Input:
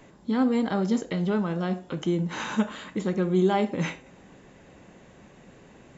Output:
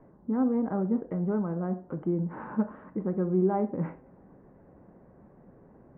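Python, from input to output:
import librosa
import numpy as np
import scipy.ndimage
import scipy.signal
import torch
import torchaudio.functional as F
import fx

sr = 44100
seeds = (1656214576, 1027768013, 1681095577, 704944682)

y = scipy.signal.sosfilt(scipy.signal.bessel(6, 920.0, 'lowpass', norm='mag', fs=sr, output='sos'), x)
y = y * librosa.db_to_amplitude(-2.5)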